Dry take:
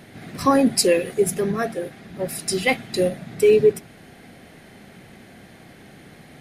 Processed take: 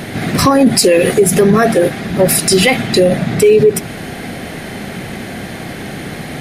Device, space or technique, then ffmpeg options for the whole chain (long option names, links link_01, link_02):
loud club master: -filter_complex "[0:a]acompressor=threshold=-19dB:ratio=3,asoftclip=type=hard:threshold=-12.5dB,alimiter=level_in=21dB:limit=-1dB:release=50:level=0:latency=1,asettb=1/sr,asplit=3[link_01][link_02][link_03];[link_01]atrim=end=2.824[link_04];[link_02]atrim=start=2.82:end=3.44,asetpts=PTS-STARTPTS,afade=type=in:duration=0.004:curve=qsin,afade=type=out:start_time=0.616:duration=0.004:curve=qsin,highshelf=frequency=7600:gain=-5.5[link_05];[link_03]atrim=start=3.436[link_06];[link_04][link_05]acrossfade=duration=0.004:curve1=hsin:curve2=qsin[link_07];[link_07][link_06]acrossfade=duration=0.004:curve1=qsin:curve2=hsin,volume=-1dB"